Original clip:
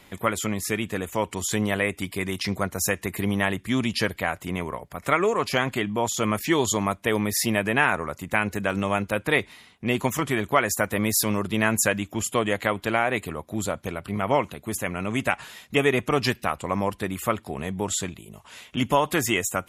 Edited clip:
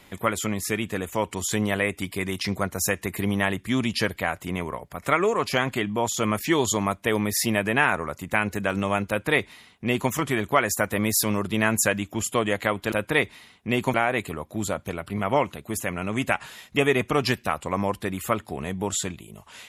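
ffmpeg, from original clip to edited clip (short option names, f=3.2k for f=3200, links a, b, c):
-filter_complex "[0:a]asplit=3[a][b][c];[a]atrim=end=12.922[d];[b]atrim=start=9.088:end=10.112[e];[c]atrim=start=12.918[f];[d][e]acrossfade=d=0.004:c1=hsin:c2=hsin[g];[g][f]acrossfade=d=0.004:c1=hsin:c2=hsin"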